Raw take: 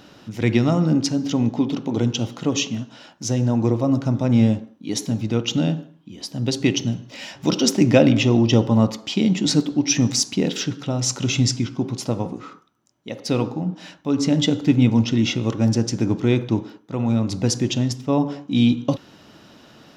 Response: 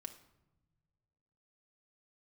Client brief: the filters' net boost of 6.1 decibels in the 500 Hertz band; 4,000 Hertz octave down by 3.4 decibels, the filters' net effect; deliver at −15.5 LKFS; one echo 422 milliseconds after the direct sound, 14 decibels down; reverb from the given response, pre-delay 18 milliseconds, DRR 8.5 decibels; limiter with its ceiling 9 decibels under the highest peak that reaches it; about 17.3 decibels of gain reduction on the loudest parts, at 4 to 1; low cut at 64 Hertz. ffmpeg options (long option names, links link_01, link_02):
-filter_complex "[0:a]highpass=64,equalizer=frequency=500:width_type=o:gain=7.5,equalizer=frequency=4000:width_type=o:gain=-5,acompressor=threshold=-25dB:ratio=4,alimiter=limit=-20.5dB:level=0:latency=1,aecho=1:1:422:0.2,asplit=2[link_01][link_02];[1:a]atrim=start_sample=2205,adelay=18[link_03];[link_02][link_03]afir=irnorm=-1:irlink=0,volume=-4dB[link_04];[link_01][link_04]amix=inputs=2:normalize=0,volume=14.5dB"